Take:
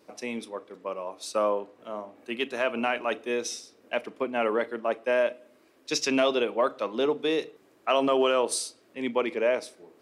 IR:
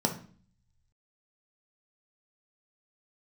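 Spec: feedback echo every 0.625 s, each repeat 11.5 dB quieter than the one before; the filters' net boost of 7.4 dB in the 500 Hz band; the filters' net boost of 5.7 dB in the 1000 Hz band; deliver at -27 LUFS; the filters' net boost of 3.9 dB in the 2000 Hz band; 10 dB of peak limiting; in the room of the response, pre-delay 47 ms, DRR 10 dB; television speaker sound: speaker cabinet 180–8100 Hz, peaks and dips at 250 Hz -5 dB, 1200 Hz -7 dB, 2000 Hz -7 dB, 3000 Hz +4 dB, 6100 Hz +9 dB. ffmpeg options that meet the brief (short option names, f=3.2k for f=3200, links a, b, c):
-filter_complex "[0:a]equalizer=f=500:t=o:g=7,equalizer=f=1k:t=o:g=7,equalizer=f=2k:t=o:g=5.5,alimiter=limit=-14dB:level=0:latency=1,aecho=1:1:625|1250|1875:0.266|0.0718|0.0194,asplit=2[a][b];[1:a]atrim=start_sample=2205,adelay=47[c];[b][c]afir=irnorm=-1:irlink=0,volume=-18.5dB[d];[a][d]amix=inputs=2:normalize=0,highpass=f=180:w=0.5412,highpass=f=180:w=1.3066,equalizer=f=250:t=q:w=4:g=-5,equalizer=f=1.2k:t=q:w=4:g=-7,equalizer=f=2k:t=q:w=4:g=-7,equalizer=f=3k:t=q:w=4:g=4,equalizer=f=6.1k:t=q:w=4:g=9,lowpass=f=8.1k:w=0.5412,lowpass=f=8.1k:w=1.3066,volume=-2dB"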